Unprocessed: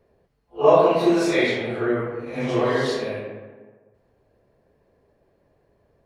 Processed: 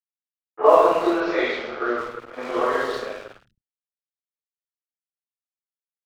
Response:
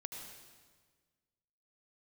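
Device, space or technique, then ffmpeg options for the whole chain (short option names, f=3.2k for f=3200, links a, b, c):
pocket radio on a weak battery: -filter_complex "[0:a]highpass=350,lowpass=3.6k,aeval=exprs='sgn(val(0))*max(abs(val(0))-0.0158,0)':c=same,equalizer=f=1.3k:t=o:w=0.52:g=10,asettb=1/sr,asplit=3[a][b][c];[a]atrim=end=1.154[d];[b]atrim=start=1.15:end=1.93,asetpts=PTS-STARTPTS,afade=t=in:d=0.004:c=qsin,afade=t=out:st=0.776:d=0.004:c=qsin,lowpass=f=5.2k:w=0.5412,lowpass=f=5.2k:w=1.3066[e];[c]atrim=start=1.926[f];[d][e]acrossfade=d=0.004:c1=hsin:c2=qsin[g];[g][f]acrossfade=d=0.004:c1=qsin:c2=hsin,acrossover=split=160|2100[h][i][j];[j]adelay=50[k];[h]adelay=150[l];[l][i][k]amix=inputs=3:normalize=0,volume=1dB"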